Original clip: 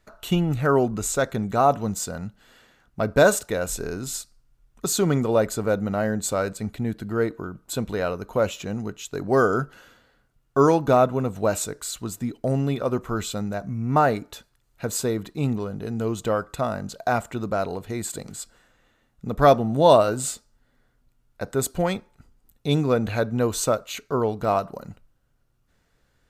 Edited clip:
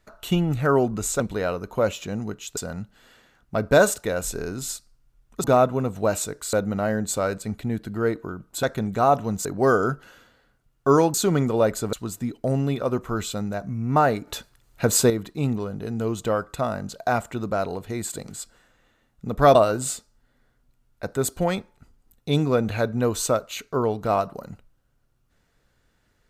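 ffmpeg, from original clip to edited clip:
-filter_complex "[0:a]asplit=12[a][b][c][d][e][f][g][h][i][j][k][l];[a]atrim=end=1.202[m];[b]atrim=start=7.778:end=9.152[n];[c]atrim=start=2.018:end=4.892[o];[d]atrim=start=10.838:end=11.932[p];[e]atrim=start=5.678:end=7.782[q];[f]atrim=start=1.198:end=2.022[r];[g]atrim=start=9.148:end=10.842[s];[h]atrim=start=4.888:end=5.682[t];[i]atrim=start=11.928:end=14.272[u];[j]atrim=start=14.268:end=15.102,asetpts=PTS-STARTPTS,volume=7.5dB[v];[k]atrim=start=15.098:end=19.552[w];[l]atrim=start=19.928[x];[m][n]acrossfade=d=0.004:c1=hsin:c2=hsin[y];[y][o]acrossfade=d=0.004:c1=hsin:c2=hsin[z];[z][p]acrossfade=d=0.004:c1=hsin:c2=hsin[aa];[aa][q]acrossfade=d=0.004:c1=hsin:c2=hsin[ab];[ab][r]acrossfade=d=0.004:c1=hsin:c2=hsin[ac];[ac][s]acrossfade=d=0.004:c1=hsin:c2=hsin[ad];[ad][t]acrossfade=d=0.004:c1=hsin:c2=hsin[ae];[ae][u]acrossfade=d=0.004:c1=hsin:c2=hsin[af];[af][v]acrossfade=d=0.004:c1=hsin:c2=hsin[ag];[ag][w]acrossfade=d=0.004:c1=hsin:c2=hsin[ah];[ah][x]acrossfade=d=0.004:c1=hsin:c2=hsin"

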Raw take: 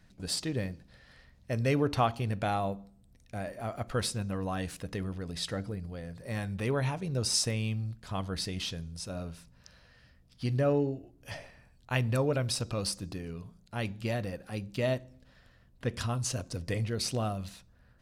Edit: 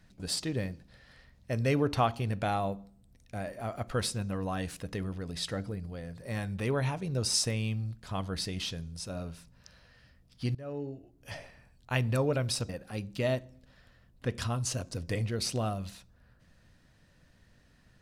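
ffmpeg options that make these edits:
-filter_complex "[0:a]asplit=3[a][b][c];[a]atrim=end=10.55,asetpts=PTS-STARTPTS,afade=t=out:st=10.546:d=0.004:c=hsin:silence=0.0707946[d];[b]atrim=start=10.55:end=12.692,asetpts=PTS-STARTPTS,afade=t=in:d=0.85:silence=0.0707946[e];[c]atrim=start=14.278[f];[d][e]concat=n=2:v=0:a=1[g];[g][f]acrossfade=d=0.004:c1=hsin:c2=hsin"

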